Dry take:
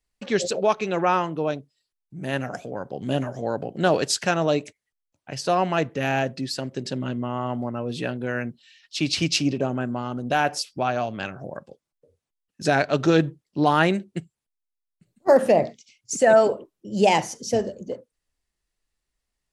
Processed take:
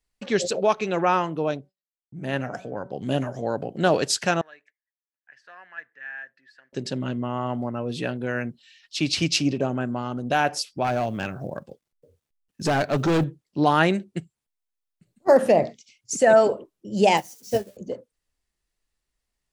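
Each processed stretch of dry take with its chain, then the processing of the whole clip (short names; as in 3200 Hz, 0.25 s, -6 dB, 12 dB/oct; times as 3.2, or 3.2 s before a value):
1.57–2.92 de-hum 189.7 Hz, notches 12 + expander -57 dBFS + high shelf 7300 Hz -11.5 dB
4.41–6.73 block floating point 7-bit + band-pass 1700 Hz, Q 14
10.84–13.24 low shelf 360 Hz +5.5 dB + companded quantiser 8-bit + hard clip -18 dBFS
17.17–17.77 switching spikes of -25.5 dBFS + doubler 15 ms -7 dB + upward expander 2.5:1, over -31 dBFS
whole clip: dry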